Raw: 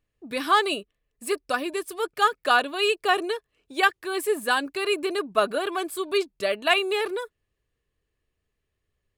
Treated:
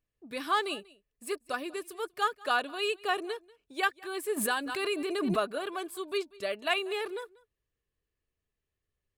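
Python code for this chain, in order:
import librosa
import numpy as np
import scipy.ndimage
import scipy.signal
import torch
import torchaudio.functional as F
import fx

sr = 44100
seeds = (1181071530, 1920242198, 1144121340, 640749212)

y = x + 10.0 ** (-23.0 / 20.0) * np.pad(x, (int(190 * sr / 1000.0), 0))[:len(x)]
y = fx.pre_swell(y, sr, db_per_s=28.0, at=(4.36, 5.39), fade=0.02)
y = y * librosa.db_to_amplitude(-8.0)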